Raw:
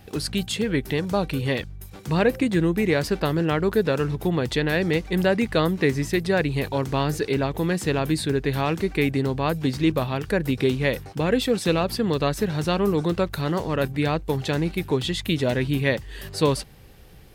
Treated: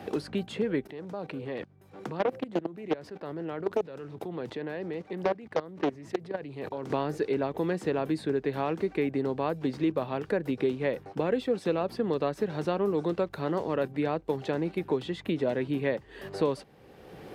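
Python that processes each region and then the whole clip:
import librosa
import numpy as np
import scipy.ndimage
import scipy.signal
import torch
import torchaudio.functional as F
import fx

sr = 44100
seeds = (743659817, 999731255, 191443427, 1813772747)

y = fx.chain(x, sr, fx.highpass(hz=76.0, slope=24),
    fx.level_steps(step_db=19),
    fx.doppler_dist(depth_ms=0.75), at=(0.87, 6.9))
y = scipy.signal.sosfilt(scipy.signal.butter(2, 430.0, 'highpass', fs=sr, output='sos'), y)
y = fx.tilt_eq(y, sr, slope=-4.5)
y = fx.band_squash(y, sr, depth_pct=70)
y = y * 10.0 ** (-6.0 / 20.0)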